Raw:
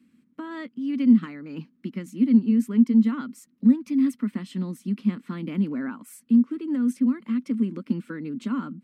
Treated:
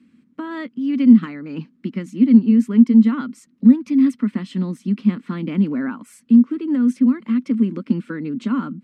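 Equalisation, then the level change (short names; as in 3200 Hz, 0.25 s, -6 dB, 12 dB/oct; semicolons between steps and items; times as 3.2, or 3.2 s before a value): air absorption 59 m; +6.5 dB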